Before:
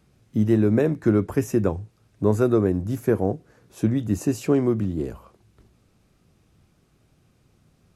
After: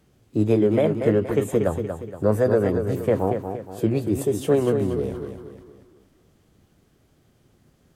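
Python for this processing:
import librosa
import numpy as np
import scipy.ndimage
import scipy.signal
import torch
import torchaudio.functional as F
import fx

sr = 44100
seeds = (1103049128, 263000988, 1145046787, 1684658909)

y = fx.echo_feedback(x, sr, ms=235, feedback_pct=42, wet_db=-7.5)
y = fx.formant_shift(y, sr, semitones=4)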